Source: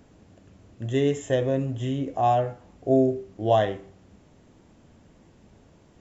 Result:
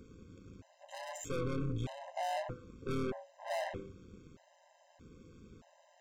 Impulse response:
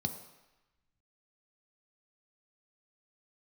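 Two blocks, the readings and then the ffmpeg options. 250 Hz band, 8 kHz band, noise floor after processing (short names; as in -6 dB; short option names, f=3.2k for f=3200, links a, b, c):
-15.5 dB, n/a, -67 dBFS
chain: -af "aeval=exprs='(tanh(56.2*val(0)+0.45)-tanh(0.45))/56.2':c=same,tremolo=f=170:d=0.75,afftfilt=real='re*gt(sin(2*PI*0.8*pts/sr)*(1-2*mod(floor(b*sr/1024/530),2)),0)':imag='im*gt(sin(2*PI*0.8*pts/sr)*(1-2*mod(floor(b*sr/1024/530),2)),0)':win_size=1024:overlap=0.75,volume=4.5dB"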